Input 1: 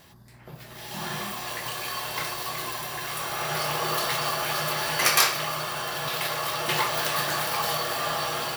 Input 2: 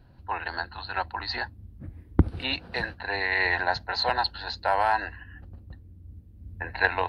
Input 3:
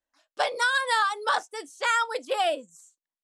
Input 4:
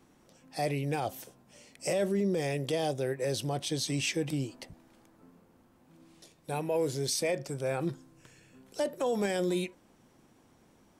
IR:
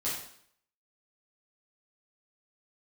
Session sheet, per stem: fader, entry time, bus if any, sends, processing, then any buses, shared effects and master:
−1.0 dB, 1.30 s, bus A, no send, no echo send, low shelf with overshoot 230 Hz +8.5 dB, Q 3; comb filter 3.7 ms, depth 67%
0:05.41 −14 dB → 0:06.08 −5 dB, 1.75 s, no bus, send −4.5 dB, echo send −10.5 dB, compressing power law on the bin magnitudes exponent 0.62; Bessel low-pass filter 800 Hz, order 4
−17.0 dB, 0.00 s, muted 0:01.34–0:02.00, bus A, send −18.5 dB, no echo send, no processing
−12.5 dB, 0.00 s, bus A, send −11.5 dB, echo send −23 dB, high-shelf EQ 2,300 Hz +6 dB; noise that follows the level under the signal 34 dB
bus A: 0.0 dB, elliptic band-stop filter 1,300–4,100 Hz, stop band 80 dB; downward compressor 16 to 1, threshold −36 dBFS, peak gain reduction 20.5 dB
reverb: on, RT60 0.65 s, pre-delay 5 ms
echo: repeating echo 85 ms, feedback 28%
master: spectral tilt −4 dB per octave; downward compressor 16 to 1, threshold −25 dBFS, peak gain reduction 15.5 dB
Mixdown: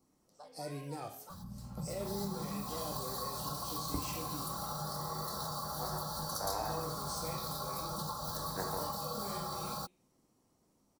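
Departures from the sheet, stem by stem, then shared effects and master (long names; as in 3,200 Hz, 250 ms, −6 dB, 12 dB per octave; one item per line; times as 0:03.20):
stem 2 −14.0 dB → −24.0 dB
stem 3 −17.0 dB → −27.0 dB
master: missing spectral tilt −4 dB per octave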